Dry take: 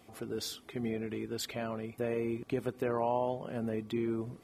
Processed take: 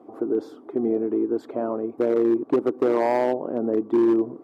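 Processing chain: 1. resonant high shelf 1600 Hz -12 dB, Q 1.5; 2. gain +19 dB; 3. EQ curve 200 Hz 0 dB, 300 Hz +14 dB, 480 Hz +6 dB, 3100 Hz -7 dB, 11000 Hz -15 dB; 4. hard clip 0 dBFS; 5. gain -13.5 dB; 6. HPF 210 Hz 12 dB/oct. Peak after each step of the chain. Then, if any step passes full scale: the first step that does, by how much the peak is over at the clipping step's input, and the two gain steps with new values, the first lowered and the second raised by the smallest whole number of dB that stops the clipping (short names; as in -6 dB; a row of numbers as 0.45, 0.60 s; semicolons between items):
-18.5, +0.5, +6.5, 0.0, -13.5, -9.5 dBFS; step 2, 6.5 dB; step 2 +12 dB, step 5 -6.5 dB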